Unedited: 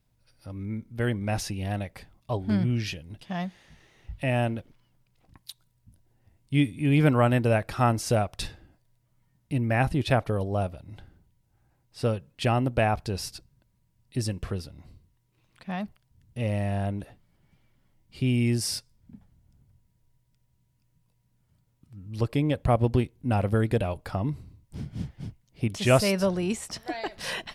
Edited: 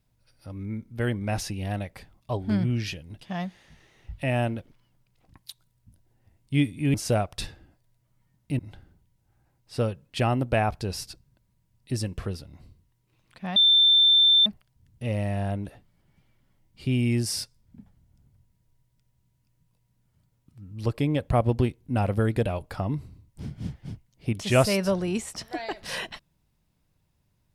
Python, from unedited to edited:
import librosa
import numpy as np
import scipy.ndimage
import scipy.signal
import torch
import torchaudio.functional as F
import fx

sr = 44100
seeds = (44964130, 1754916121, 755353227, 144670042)

y = fx.edit(x, sr, fx.cut(start_s=6.94, length_s=1.01),
    fx.cut(start_s=9.6, length_s=1.24),
    fx.insert_tone(at_s=15.81, length_s=0.9, hz=3560.0, db=-14.5), tone=tone)